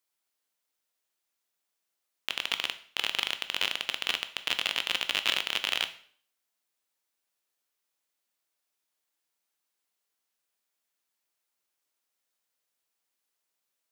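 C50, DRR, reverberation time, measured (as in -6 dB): 14.0 dB, 9.5 dB, 0.50 s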